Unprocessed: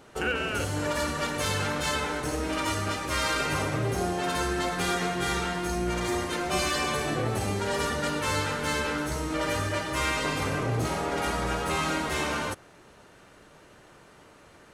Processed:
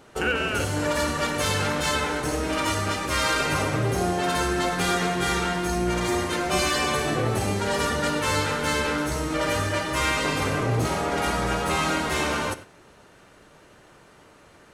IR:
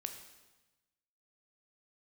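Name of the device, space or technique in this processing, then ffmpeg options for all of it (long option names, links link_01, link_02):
keyed gated reverb: -filter_complex "[0:a]asplit=3[link_01][link_02][link_03];[1:a]atrim=start_sample=2205[link_04];[link_02][link_04]afir=irnorm=-1:irlink=0[link_05];[link_03]apad=whole_len=650033[link_06];[link_05][link_06]sidechaingate=range=-12dB:threshold=-43dB:ratio=16:detection=peak,volume=-2.5dB[link_07];[link_01][link_07]amix=inputs=2:normalize=0"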